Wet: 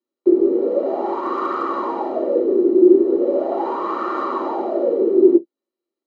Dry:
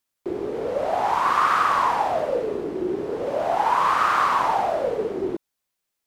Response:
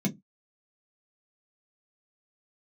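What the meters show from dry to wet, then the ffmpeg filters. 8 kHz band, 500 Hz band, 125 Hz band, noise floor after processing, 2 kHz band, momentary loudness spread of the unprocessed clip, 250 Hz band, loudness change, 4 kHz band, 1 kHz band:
under -15 dB, +8.5 dB, no reading, under -85 dBFS, -12.0 dB, 10 LU, +15.0 dB, +4.0 dB, under -10 dB, -5.0 dB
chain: -filter_complex "[0:a]lowpass=4300,asoftclip=type=hard:threshold=0.316[s0];[1:a]atrim=start_sample=2205,asetrate=79380,aresample=44100[s1];[s0][s1]afir=irnorm=-1:irlink=0,volume=0.422"

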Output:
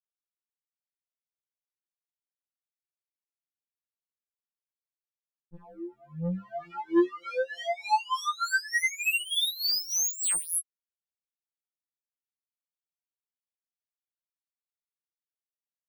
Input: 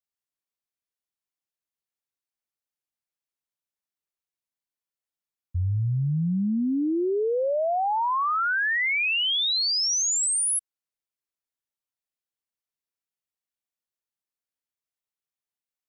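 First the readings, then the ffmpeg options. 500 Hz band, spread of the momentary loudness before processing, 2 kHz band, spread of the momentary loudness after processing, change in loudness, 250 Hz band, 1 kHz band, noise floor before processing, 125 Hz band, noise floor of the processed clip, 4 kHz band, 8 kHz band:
-6.0 dB, 5 LU, -4.0 dB, 13 LU, -4.5 dB, -5.5 dB, -4.5 dB, under -85 dBFS, -14.5 dB, under -85 dBFS, -5.5 dB, -4.5 dB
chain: -af "afftfilt=real='re*pow(10,7/40*sin(2*PI*(1.8*log(max(b,1)*sr/1024/100)/log(2)-(-0.85)*(pts-256)/sr)))':imag='im*pow(10,7/40*sin(2*PI*(1.8*log(max(b,1)*sr/1024/100)/log(2)-(-0.85)*(pts-256)/sr)))':win_size=1024:overlap=0.75,acrusher=bits=3:mix=0:aa=0.5,afftfilt=real='re*2.83*eq(mod(b,8),0)':imag='im*2.83*eq(mod(b,8),0)':win_size=2048:overlap=0.75,volume=0.631"

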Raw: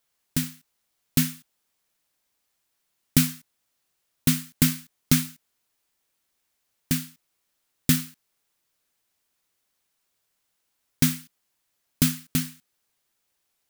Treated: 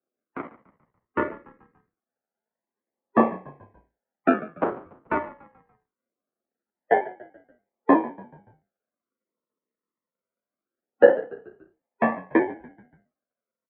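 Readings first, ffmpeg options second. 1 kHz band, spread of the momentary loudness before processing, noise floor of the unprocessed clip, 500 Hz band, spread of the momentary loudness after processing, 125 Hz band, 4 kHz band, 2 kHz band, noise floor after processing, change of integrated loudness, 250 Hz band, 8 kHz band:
+21.0 dB, 14 LU, -76 dBFS, +24.0 dB, 22 LU, -16.5 dB, under -20 dB, +5.5 dB, under -85 dBFS, +1.0 dB, 0.0 dB, under -40 dB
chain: -filter_complex "[0:a]afftfilt=real='real(if(between(b,1,1012),(2*floor((b-1)/92)+1)*92-b,b),0)':imag='imag(if(between(b,1,1012),(2*floor((b-1)/92)+1)*92-b,b),0)*if(between(b,1,1012),-1,1)':win_size=2048:overlap=0.75,bandreject=f=450:w=12,aecho=1:1:6.7:0.96,apsyclip=3.35,adynamicsmooth=sensitivity=7.5:basefreq=650,acrusher=samples=41:mix=1:aa=0.000001:lfo=1:lforange=24.6:lforate=0.23,flanger=delay=0.2:depth=1.1:regen=-34:speed=0.63:shape=sinusoidal,highpass=f=360:t=q:w=0.5412,highpass=f=360:t=q:w=1.307,lowpass=f=2100:t=q:w=0.5176,lowpass=f=2100:t=q:w=0.7071,lowpass=f=2100:t=q:w=1.932,afreqshift=-73,asplit=2[s0][s1];[s1]asplit=4[s2][s3][s4][s5];[s2]adelay=144,afreqshift=-42,volume=0.1[s6];[s3]adelay=288,afreqshift=-84,volume=0.0479[s7];[s4]adelay=432,afreqshift=-126,volume=0.0229[s8];[s5]adelay=576,afreqshift=-168,volume=0.0111[s9];[s6][s7][s8][s9]amix=inputs=4:normalize=0[s10];[s0][s10]amix=inputs=2:normalize=0,adynamicequalizer=threshold=0.0251:dfrequency=700:dqfactor=0.71:tfrequency=700:tqfactor=0.71:attack=5:release=100:ratio=0.375:range=2.5:mode=boostabove:tftype=bell,volume=0.75"

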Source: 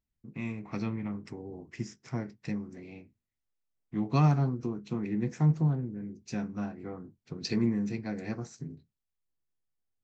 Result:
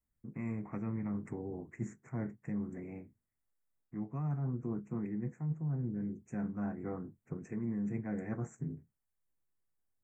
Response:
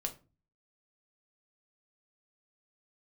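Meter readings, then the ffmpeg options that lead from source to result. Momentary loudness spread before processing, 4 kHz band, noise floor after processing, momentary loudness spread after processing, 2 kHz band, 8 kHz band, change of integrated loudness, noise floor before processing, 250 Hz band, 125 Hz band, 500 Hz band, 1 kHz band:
19 LU, under -35 dB, -85 dBFS, 9 LU, -8.0 dB, no reading, -7.0 dB, under -85 dBFS, -5.5 dB, -7.5 dB, -5.5 dB, -11.0 dB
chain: -af "adynamicequalizer=threshold=0.0126:dfrequency=150:dqfactor=1.7:tfrequency=150:tqfactor=1.7:attack=5:release=100:ratio=0.375:range=2.5:mode=boostabove:tftype=bell,areverse,acompressor=threshold=0.02:ratio=12,areverse,asuperstop=centerf=4000:order=8:qfactor=0.77,volume=1.12"

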